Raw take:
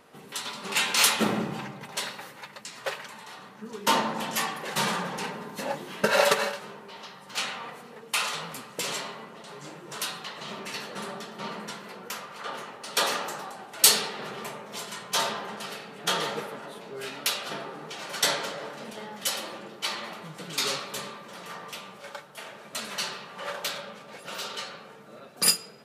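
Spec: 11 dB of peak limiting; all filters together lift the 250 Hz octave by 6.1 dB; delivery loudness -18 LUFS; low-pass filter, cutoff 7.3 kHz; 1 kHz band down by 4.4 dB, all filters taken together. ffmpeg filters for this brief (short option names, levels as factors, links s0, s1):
-af "lowpass=7300,equalizer=f=250:t=o:g=8,equalizer=f=1000:t=o:g=-6,volume=5.31,alimiter=limit=0.794:level=0:latency=1"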